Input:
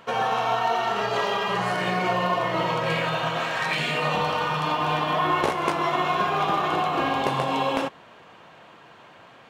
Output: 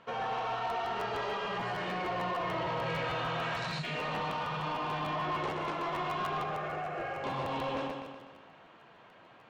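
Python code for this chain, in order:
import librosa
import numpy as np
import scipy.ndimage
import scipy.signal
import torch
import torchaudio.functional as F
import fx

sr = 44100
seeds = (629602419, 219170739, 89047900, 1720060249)

p1 = fx.spec_box(x, sr, start_s=3.55, length_s=0.29, low_hz=210.0, high_hz=3600.0, gain_db=-16)
p2 = fx.fixed_phaser(p1, sr, hz=990.0, stages=6, at=(6.43, 7.24))
p3 = p2 + fx.echo_feedback(p2, sr, ms=124, feedback_pct=54, wet_db=-7.0, dry=0)
p4 = 10.0 ** (-20.5 / 20.0) * np.tanh(p3 / 10.0 ** (-20.5 / 20.0))
p5 = fx.air_absorb(p4, sr, metres=100.0)
p6 = fx.buffer_crackle(p5, sr, first_s=0.69, period_s=0.15, block=512, kind='repeat')
p7 = fx.env_flatten(p6, sr, amount_pct=70, at=(2.19, 3.82))
y = F.gain(torch.from_numpy(p7), -8.0).numpy()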